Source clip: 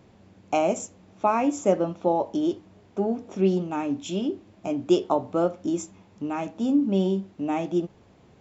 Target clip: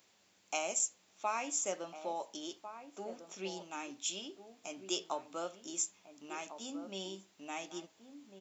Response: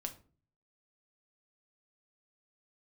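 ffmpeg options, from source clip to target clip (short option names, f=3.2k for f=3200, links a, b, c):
-filter_complex "[0:a]aderivative,asplit=2[a][b];[b]adelay=1399,volume=-10dB,highshelf=f=4k:g=-31.5[c];[a][c]amix=inputs=2:normalize=0,volume=5dB"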